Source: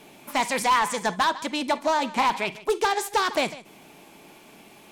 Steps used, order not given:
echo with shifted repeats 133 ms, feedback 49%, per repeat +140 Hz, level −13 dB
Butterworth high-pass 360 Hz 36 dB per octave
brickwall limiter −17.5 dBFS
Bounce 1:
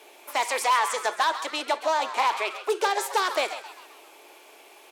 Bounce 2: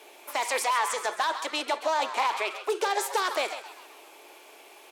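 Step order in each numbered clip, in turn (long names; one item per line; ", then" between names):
brickwall limiter, then Butterworth high-pass, then echo with shifted repeats
Butterworth high-pass, then brickwall limiter, then echo with shifted repeats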